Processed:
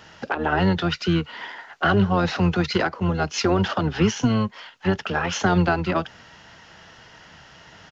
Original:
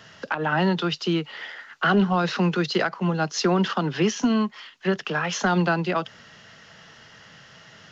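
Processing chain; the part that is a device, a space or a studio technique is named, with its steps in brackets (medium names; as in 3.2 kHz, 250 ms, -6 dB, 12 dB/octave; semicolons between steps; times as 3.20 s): octave pedal (harmony voices -12 st -4 dB)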